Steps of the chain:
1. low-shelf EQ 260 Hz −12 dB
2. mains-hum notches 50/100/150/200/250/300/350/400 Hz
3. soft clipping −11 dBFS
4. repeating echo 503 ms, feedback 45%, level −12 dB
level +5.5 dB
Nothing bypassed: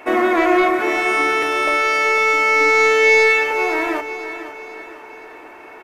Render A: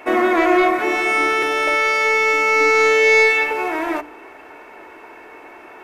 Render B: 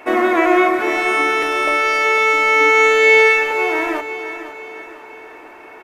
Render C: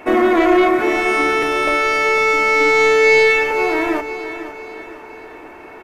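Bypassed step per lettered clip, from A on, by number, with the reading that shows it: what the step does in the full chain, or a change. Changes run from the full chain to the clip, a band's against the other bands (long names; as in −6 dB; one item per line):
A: 4, echo-to-direct ratio −11.0 dB to none audible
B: 3, distortion level −18 dB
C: 1, 250 Hz band +3.5 dB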